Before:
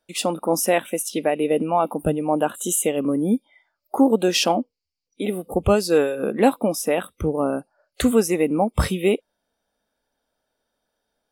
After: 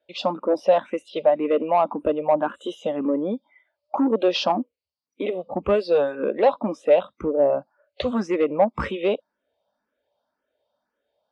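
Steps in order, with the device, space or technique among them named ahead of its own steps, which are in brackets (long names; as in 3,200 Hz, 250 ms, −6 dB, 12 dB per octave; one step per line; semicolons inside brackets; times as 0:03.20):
barber-pole phaser into a guitar amplifier (frequency shifter mixed with the dry sound +1.9 Hz; soft clipping −14 dBFS, distortion −16 dB; loudspeaker in its box 91–4,300 Hz, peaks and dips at 160 Hz −6 dB, 580 Hz +10 dB, 1,000 Hz +5 dB)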